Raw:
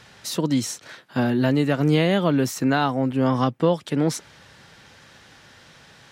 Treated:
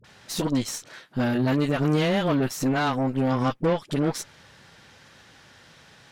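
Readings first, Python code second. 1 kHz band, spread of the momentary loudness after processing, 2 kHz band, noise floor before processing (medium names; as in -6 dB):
-2.5 dB, 11 LU, -2.0 dB, -51 dBFS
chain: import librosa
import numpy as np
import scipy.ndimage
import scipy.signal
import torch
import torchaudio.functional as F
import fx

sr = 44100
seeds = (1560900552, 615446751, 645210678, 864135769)

y = 10.0 ** (-8.5 / 20.0) * np.tanh(x / 10.0 ** (-8.5 / 20.0))
y = fx.dispersion(y, sr, late='highs', ms=44.0, hz=580.0)
y = fx.cheby_harmonics(y, sr, harmonics=(6,), levels_db=(-19,), full_scale_db=-9.5)
y = y * librosa.db_to_amplitude(-2.5)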